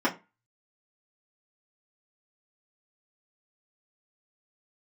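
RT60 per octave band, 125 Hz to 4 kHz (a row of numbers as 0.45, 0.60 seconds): 0.30, 0.30, 0.25, 0.25, 0.25, 0.20 seconds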